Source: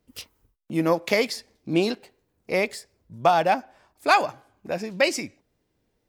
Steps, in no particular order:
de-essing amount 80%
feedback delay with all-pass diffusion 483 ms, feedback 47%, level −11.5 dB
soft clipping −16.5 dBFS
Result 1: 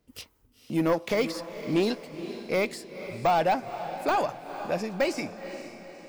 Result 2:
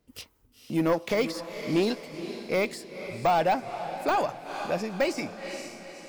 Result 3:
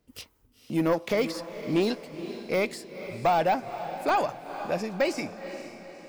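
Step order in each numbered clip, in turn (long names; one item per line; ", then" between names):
soft clipping, then de-essing, then feedback delay with all-pass diffusion
soft clipping, then feedback delay with all-pass diffusion, then de-essing
de-essing, then soft clipping, then feedback delay with all-pass diffusion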